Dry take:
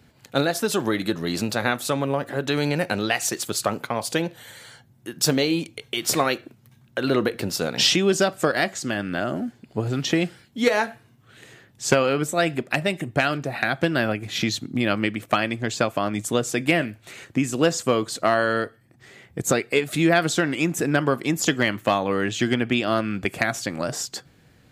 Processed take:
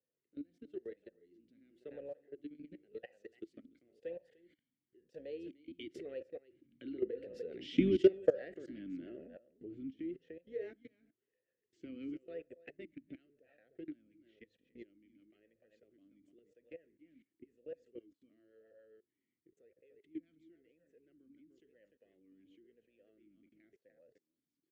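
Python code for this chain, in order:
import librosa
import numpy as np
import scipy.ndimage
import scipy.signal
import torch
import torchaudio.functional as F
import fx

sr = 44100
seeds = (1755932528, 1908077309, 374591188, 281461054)

y = fx.octave_divider(x, sr, octaves=2, level_db=-3.0)
y = fx.doppler_pass(y, sr, speed_mps=8, closest_m=4.4, pass_at_s=7.62)
y = fx.low_shelf(y, sr, hz=410.0, db=-5.5)
y = y + 10.0 ** (-10.5 / 20.0) * np.pad(y, (int(298 * sr / 1000.0), 0))[:len(y)]
y = fx.rotary_switch(y, sr, hz=0.85, then_hz=7.5, switch_at_s=6.93)
y = fx.tilt_shelf(y, sr, db=8.5, hz=830.0)
y = fx.rev_fdn(y, sr, rt60_s=0.71, lf_ratio=0.9, hf_ratio=0.4, size_ms=35.0, drr_db=19.5)
y = fx.level_steps(y, sr, step_db=21)
y = fx.vowel_sweep(y, sr, vowels='e-i', hz=0.96)
y = y * librosa.db_to_amplitude(7.5)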